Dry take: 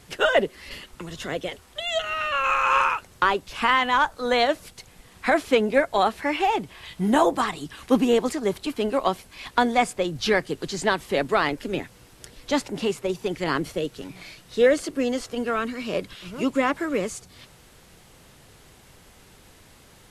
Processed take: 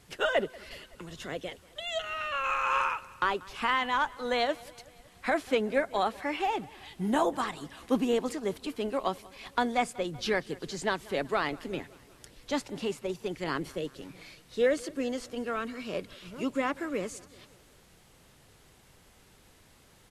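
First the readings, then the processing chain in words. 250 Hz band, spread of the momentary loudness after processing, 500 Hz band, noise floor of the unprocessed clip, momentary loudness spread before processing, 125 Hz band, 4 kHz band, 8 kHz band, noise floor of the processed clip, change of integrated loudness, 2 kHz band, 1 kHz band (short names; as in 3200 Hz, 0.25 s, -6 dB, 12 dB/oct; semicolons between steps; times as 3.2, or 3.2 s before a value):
-7.5 dB, 14 LU, -7.5 dB, -52 dBFS, 13 LU, -7.5 dB, -7.5 dB, -7.5 dB, -59 dBFS, -7.5 dB, -7.5 dB, -7.5 dB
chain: feedback echo 0.188 s, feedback 60%, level -22.5 dB; gain -7.5 dB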